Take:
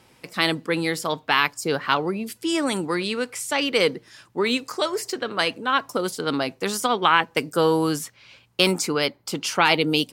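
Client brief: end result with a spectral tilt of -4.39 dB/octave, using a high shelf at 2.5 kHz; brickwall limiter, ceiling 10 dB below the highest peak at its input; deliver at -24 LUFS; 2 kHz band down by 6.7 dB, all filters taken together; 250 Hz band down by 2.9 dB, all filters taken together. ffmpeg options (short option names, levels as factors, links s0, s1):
-af "equalizer=f=250:t=o:g=-4,equalizer=f=2000:t=o:g=-5.5,highshelf=f=2500:g=-7,volume=1.78,alimiter=limit=0.266:level=0:latency=1"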